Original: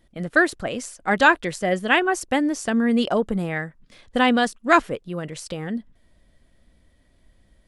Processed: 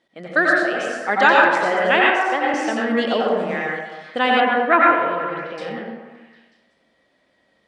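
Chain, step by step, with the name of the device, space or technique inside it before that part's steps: supermarket ceiling speaker (band-pass 350–5200 Hz; reverberation RT60 1.1 s, pre-delay 82 ms, DRR -3.5 dB); 2.10–2.54 s: tone controls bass -15 dB, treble -9 dB; 4.40–5.58 s: low-pass 2.7 kHz 24 dB/octave; repeats whose band climbs or falls 188 ms, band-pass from 760 Hz, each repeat 0.7 oct, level -10.5 dB

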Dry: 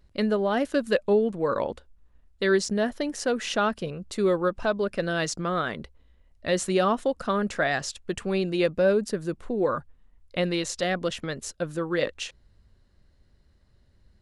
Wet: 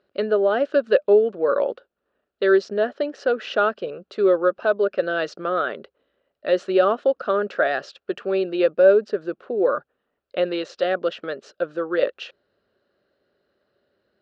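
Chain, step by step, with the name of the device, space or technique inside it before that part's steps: phone earpiece (cabinet simulation 380–3800 Hz, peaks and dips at 400 Hz +6 dB, 580 Hz +6 dB, 950 Hz -8 dB, 1.4 kHz +5 dB, 2.1 kHz -9 dB, 3.5 kHz -4 dB); trim +3 dB

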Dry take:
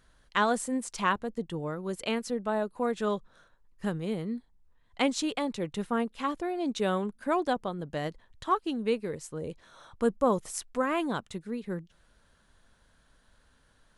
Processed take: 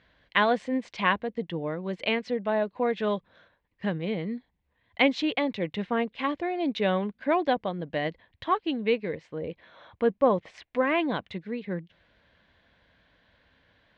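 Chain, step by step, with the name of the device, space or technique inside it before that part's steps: guitar cabinet (cabinet simulation 91–3700 Hz, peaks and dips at 140 Hz -7 dB, 230 Hz -5 dB, 390 Hz -6 dB, 880 Hz -4 dB, 1.3 kHz -10 dB, 2.1 kHz +5 dB); 9.16–10.73 s: tone controls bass -2 dB, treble -8 dB; trim +6 dB

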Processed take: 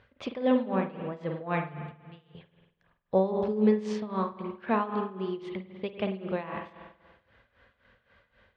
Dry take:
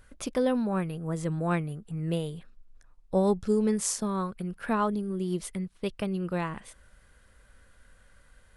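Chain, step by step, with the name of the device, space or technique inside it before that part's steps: 1.91–2.35 s: amplifier tone stack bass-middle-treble 6-0-2; combo amplifier with spring reverb and tremolo (spring tank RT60 1.3 s, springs 47 ms, chirp 35 ms, DRR 3.5 dB; tremolo 3.8 Hz, depth 80%; cabinet simulation 110–3600 Hz, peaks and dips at 170 Hz -9 dB, 300 Hz -7 dB, 1.4 kHz -6 dB); trim +3.5 dB

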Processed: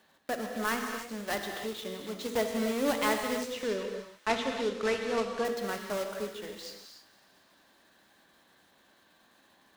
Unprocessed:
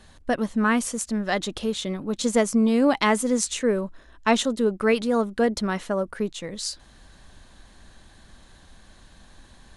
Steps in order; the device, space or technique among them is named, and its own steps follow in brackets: early digital voice recorder (band-pass 290–3900 Hz; block-companded coder 3-bit); 3.52–5.45 s: low-pass 5.8 kHz 12 dB/octave; feedback echo behind a high-pass 116 ms, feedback 80%, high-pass 1.6 kHz, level -20.5 dB; gated-style reverb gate 330 ms flat, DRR 3.5 dB; trim -8.5 dB

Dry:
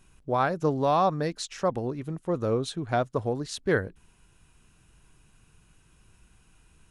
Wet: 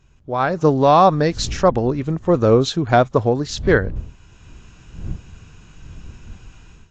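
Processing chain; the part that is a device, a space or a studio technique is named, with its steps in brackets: smartphone video outdoors (wind noise 86 Hz -44 dBFS; level rider gain up to 14.5 dB; AAC 48 kbps 16 kHz)

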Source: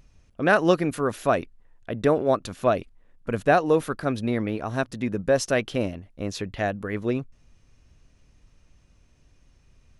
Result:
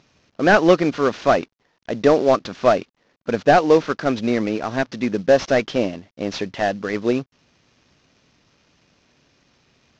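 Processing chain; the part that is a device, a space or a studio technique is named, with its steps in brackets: early wireless headset (high-pass 190 Hz 12 dB/octave; CVSD coder 32 kbps); trim +7 dB

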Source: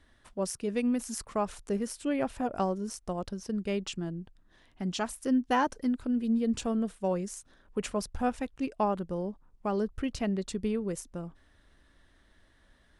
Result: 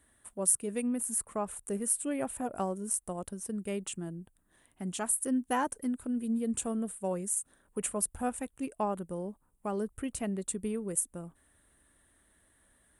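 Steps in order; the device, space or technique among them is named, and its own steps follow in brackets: 0.83–1.63 s: peaking EQ 7.5 kHz -5.5 dB 2.5 oct; budget condenser microphone (high-pass 67 Hz 6 dB/octave; resonant high shelf 6.9 kHz +12 dB, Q 3); trim -3.5 dB

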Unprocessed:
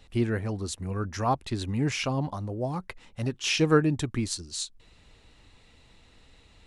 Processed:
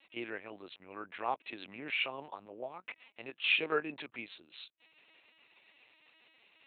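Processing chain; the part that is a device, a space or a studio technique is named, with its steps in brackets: talking toy (LPC vocoder at 8 kHz pitch kept; high-pass 460 Hz 12 dB/octave; peaking EQ 2.5 kHz +10 dB 0.59 oct); trim -7.5 dB

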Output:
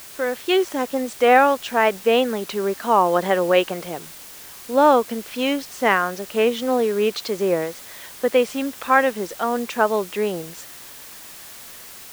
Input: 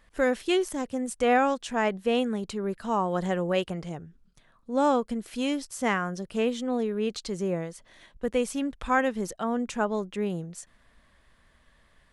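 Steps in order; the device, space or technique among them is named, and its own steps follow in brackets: dictaphone (band-pass 350–4300 Hz; level rider; wow and flutter; white noise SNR 19 dB)

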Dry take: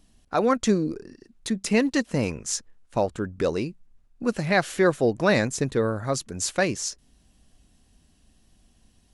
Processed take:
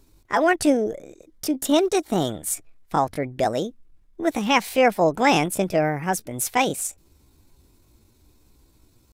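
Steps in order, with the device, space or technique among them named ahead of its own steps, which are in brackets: 0.83–2.56 s: band-stop 1.9 kHz, Q 6.3; chipmunk voice (pitch shift +5.5 st); trim +2.5 dB

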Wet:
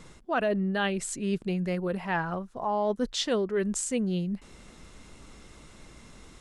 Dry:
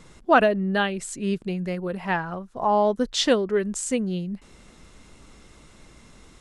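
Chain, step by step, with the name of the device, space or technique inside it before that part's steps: compression on the reversed sound (reverse; compression 8:1, threshold -24 dBFS, peak gain reduction 12.5 dB; reverse)

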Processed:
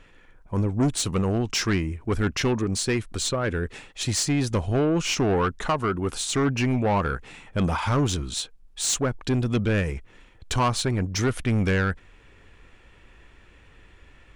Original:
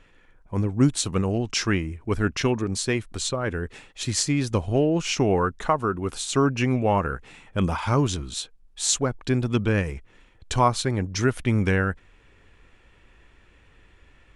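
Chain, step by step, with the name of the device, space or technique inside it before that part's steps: saturation between pre-emphasis and de-emphasis (treble shelf 7.2 kHz +6.5 dB; saturation -20 dBFS, distortion -10 dB; treble shelf 7.2 kHz -6.5 dB); trim +3 dB

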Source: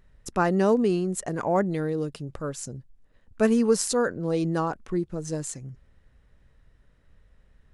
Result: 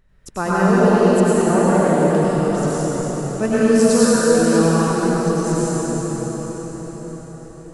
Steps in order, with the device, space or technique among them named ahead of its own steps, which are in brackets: cathedral (reverberation RT60 6.1 s, pre-delay 87 ms, DRR -10.5 dB); trim -1 dB

